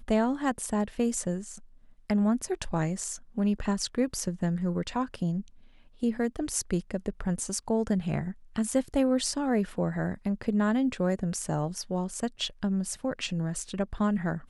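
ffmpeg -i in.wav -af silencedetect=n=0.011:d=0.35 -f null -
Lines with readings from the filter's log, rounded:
silence_start: 1.58
silence_end: 2.10 | silence_duration: 0.52
silence_start: 5.41
silence_end: 6.02 | silence_duration: 0.61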